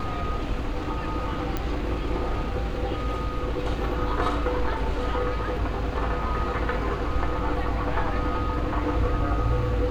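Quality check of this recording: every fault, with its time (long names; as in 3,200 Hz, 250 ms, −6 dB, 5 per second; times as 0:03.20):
0:01.57: click −14 dBFS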